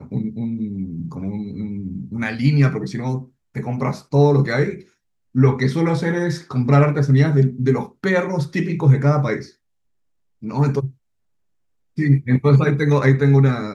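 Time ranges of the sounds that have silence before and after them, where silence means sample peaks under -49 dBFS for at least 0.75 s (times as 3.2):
10.42–10.95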